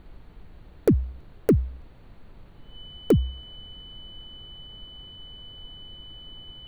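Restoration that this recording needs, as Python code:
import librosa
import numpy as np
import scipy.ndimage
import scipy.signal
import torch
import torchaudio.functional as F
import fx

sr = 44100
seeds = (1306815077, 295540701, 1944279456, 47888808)

y = fx.fix_declip(x, sr, threshold_db=-11.5)
y = fx.notch(y, sr, hz=3000.0, q=30.0)
y = fx.noise_reduce(y, sr, print_start_s=1.87, print_end_s=2.37, reduce_db=26.0)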